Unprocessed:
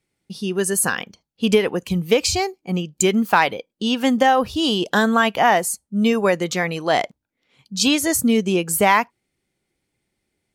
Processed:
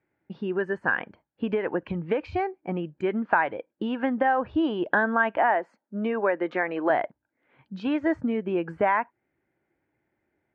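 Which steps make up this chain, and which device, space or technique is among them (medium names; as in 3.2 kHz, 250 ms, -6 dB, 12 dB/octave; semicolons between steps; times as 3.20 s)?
5.37–6.90 s: high-pass 220 Hz 24 dB/octave; bass amplifier (compression 3:1, threshold -25 dBFS, peak gain reduction 11 dB; cabinet simulation 66–2200 Hz, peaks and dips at 190 Hz -4 dB, 320 Hz +6 dB, 620 Hz +6 dB, 900 Hz +6 dB, 1.6 kHz +9 dB); trim -1.5 dB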